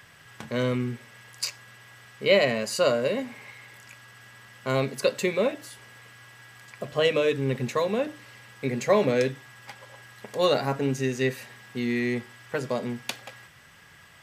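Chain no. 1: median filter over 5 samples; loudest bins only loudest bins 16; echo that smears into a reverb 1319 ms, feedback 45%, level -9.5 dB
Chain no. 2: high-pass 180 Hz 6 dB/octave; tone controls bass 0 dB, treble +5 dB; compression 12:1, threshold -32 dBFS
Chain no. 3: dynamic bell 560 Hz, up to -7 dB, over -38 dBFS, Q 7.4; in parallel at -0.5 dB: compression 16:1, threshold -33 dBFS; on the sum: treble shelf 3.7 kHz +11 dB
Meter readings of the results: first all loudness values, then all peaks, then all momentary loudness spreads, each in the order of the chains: -28.5 LUFS, -38.5 LUFS, -24.0 LUFS; -9.5 dBFS, -14.5 dBFS, -2.0 dBFS; 15 LU, 12 LU, 18 LU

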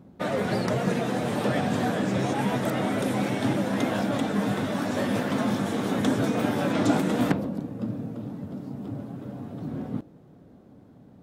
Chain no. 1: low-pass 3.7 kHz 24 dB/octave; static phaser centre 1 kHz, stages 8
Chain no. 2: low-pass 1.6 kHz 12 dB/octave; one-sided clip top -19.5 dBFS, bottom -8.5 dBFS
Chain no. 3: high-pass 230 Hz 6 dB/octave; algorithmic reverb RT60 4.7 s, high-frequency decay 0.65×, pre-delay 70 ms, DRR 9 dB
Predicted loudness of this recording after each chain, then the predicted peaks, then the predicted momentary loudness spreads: -32.0 LUFS, -28.0 LUFS, -28.5 LUFS; -11.0 dBFS, -10.5 dBFS, -9.0 dBFS; 13 LU, 11 LU, 12 LU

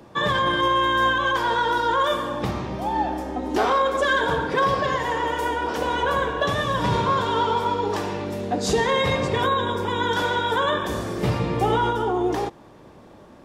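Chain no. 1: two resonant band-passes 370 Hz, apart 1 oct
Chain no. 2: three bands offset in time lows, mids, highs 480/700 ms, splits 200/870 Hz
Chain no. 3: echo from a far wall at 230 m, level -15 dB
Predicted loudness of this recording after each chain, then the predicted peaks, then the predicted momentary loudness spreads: -32.5 LUFS, -24.0 LUFS, -22.5 LUFS; -17.0 dBFS, -9.5 dBFS, -10.0 dBFS; 9 LU, 7 LU, 7 LU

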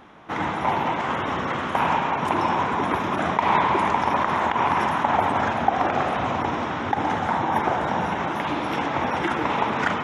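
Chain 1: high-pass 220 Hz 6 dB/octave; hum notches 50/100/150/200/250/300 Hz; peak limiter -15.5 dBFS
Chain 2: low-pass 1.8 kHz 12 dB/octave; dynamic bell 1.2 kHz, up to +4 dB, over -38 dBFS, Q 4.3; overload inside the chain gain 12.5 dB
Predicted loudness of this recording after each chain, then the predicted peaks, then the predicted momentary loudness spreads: -25.5 LUFS, -23.0 LUFS; -15.5 dBFS, -12.5 dBFS; 2 LU, 5 LU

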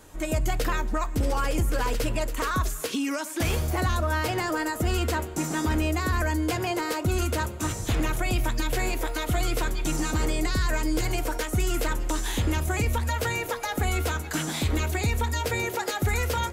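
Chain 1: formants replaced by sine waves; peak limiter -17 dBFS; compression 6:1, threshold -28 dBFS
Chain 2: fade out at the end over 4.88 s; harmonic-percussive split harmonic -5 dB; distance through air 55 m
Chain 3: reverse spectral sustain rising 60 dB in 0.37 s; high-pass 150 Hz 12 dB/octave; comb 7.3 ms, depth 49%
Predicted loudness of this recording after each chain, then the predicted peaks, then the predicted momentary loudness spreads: -31.5 LUFS, -31.5 LUFS, -26.5 LUFS; -20.5 dBFS, -17.5 dBFS, -12.0 dBFS; 3 LU, 9 LU, 3 LU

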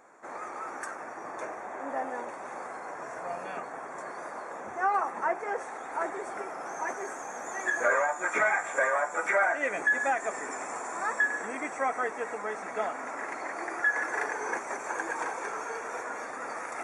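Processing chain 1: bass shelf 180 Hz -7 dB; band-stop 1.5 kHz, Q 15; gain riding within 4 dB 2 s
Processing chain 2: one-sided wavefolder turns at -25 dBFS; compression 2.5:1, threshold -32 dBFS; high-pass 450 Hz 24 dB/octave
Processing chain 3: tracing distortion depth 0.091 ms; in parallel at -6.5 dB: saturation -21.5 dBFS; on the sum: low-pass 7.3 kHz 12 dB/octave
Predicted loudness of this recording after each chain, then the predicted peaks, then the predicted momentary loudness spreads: -32.0 LUFS, -36.0 LUFS, -28.5 LUFS; -15.0 dBFS, -19.5 dBFS, -11.5 dBFS; 9 LU, 7 LU, 13 LU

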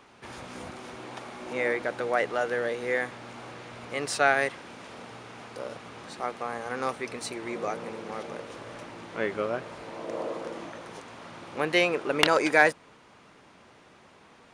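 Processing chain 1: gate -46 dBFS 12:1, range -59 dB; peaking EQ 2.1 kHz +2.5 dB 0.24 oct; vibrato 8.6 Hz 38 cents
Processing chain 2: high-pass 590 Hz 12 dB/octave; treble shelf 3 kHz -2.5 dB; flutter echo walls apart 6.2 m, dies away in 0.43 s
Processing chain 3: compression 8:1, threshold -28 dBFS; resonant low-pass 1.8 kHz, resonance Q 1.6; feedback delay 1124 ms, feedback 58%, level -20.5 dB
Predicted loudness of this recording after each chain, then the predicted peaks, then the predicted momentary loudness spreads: -28.0 LUFS, -28.5 LUFS, -34.5 LUFS; -6.0 dBFS, -4.0 dBFS, -12.5 dBFS; 20 LU, 21 LU, 17 LU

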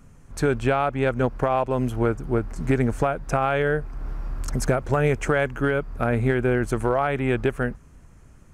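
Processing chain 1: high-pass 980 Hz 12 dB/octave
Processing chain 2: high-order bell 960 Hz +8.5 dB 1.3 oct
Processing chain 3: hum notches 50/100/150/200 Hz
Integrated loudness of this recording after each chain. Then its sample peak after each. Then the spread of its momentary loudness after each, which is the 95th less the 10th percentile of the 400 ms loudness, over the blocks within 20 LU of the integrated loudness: -31.0 LUFS, -20.5 LUFS, -24.0 LUFS; -13.5 dBFS, -3.5 dBFS, -8.0 dBFS; 8 LU, 10 LU, 7 LU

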